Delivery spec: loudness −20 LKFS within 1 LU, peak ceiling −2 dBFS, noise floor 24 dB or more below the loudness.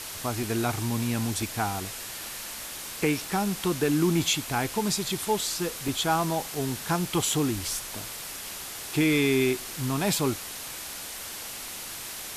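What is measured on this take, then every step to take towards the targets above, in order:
number of dropouts 5; longest dropout 2.2 ms; background noise floor −38 dBFS; target noise floor −52 dBFS; integrated loudness −28.0 LKFS; sample peak −11.0 dBFS; target loudness −20.0 LKFS
→ repair the gap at 0:00.43/0:01.42/0:05.88/0:06.55/0:07.22, 2.2 ms
noise reduction from a noise print 14 dB
level +8 dB

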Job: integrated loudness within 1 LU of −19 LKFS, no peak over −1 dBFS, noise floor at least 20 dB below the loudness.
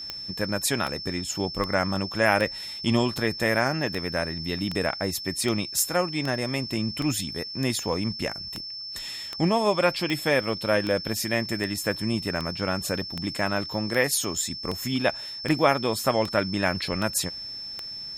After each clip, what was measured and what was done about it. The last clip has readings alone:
number of clicks 24; interfering tone 5,300 Hz; level of the tone −34 dBFS; integrated loudness −26.0 LKFS; sample peak −4.5 dBFS; target loudness −19.0 LKFS
→ click removal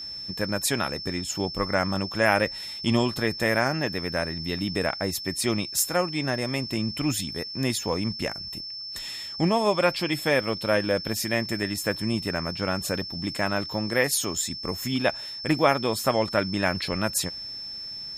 number of clicks 0; interfering tone 5,300 Hz; level of the tone −34 dBFS
→ notch filter 5,300 Hz, Q 30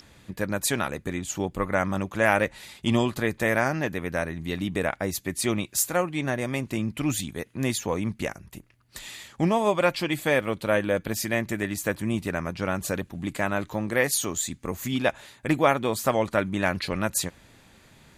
interfering tone none found; integrated loudness −26.5 LKFS; sample peak −4.5 dBFS; target loudness −19.0 LKFS
→ level +7.5 dB
brickwall limiter −1 dBFS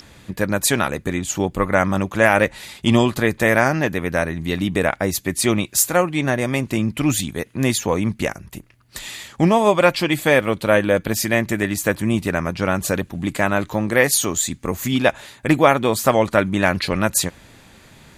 integrated loudness −19.5 LKFS; sample peak −1.0 dBFS; background noise floor −49 dBFS

